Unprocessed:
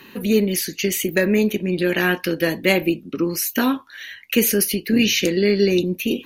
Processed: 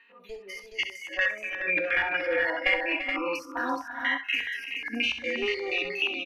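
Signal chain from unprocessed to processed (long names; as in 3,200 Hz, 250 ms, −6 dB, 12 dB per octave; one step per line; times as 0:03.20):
spectrum averaged block by block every 100 ms
high-pass filter 600 Hz 12 dB per octave
asymmetric clip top −26 dBFS
high-shelf EQ 10,000 Hz +12 dB
comb filter 4.2 ms, depth 86%
downward compressor 10 to 1, threshold −30 dBFS, peak gain reduction 16.5 dB
noise reduction from a noise print of the clip's start 25 dB
auto-filter low-pass square 4.2 Hz 930–2,400 Hz
multi-tap delay 66/251/340/424 ms −9.5/−17.5/−11.5/−6.5 dB
level +4.5 dB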